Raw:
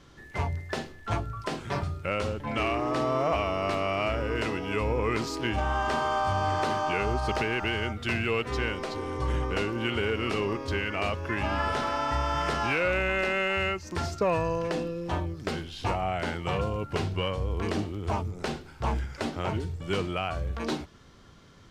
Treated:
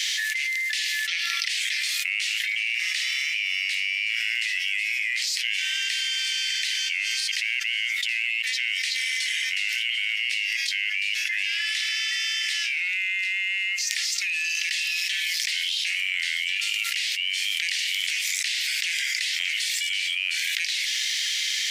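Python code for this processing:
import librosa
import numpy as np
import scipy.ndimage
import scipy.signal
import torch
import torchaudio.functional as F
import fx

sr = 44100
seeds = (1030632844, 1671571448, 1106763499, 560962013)

y = fx.spec_box(x, sr, start_s=1.09, length_s=0.39, low_hz=1100.0, high_hz=6200.0, gain_db=11)
y = scipy.signal.sosfilt(scipy.signal.butter(12, 1900.0, 'highpass', fs=sr, output='sos'), y)
y = fx.env_flatten(y, sr, amount_pct=100)
y = y * librosa.db_to_amplitude(2.0)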